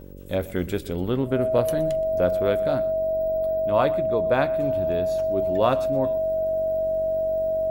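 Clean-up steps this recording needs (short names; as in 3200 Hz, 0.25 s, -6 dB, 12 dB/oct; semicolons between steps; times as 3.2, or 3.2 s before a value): de-hum 47.3 Hz, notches 12; notch 640 Hz, Q 30; inverse comb 0.122 s -19 dB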